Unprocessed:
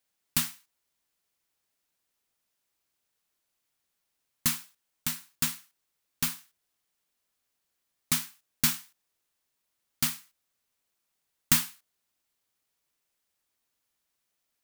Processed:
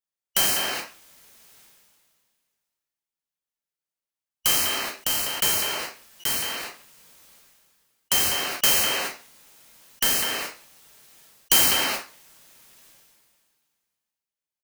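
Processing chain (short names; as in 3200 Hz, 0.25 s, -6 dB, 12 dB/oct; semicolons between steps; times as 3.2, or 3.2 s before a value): four-band scrambler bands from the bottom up 3412; non-linear reverb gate 0.16 s falling, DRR 0.5 dB; in parallel at -1 dB: compressor, threshold -33 dBFS, peak gain reduction 16.5 dB; on the sum: gate with hold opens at -51 dBFS; speakerphone echo 0.2 s, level -18 dB; stuck buffer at 6.2, samples 256, times 8; sustainer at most 28 dB/s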